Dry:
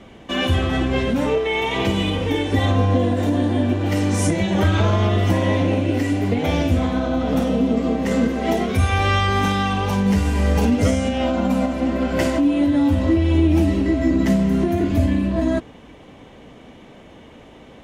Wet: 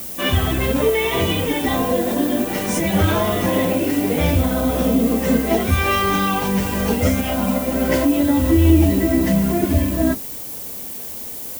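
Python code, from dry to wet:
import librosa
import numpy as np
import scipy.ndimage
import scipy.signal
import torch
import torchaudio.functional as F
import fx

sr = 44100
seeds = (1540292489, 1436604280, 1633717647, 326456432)

y = fx.hum_notches(x, sr, base_hz=50, count=7)
y = fx.stretch_vocoder_free(y, sr, factor=0.65)
y = fx.dmg_noise_colour(y, sr, seeds[0], colour='violet', level_db=-36.0)
y = y * 10.0 ** (5.0 / 20.0)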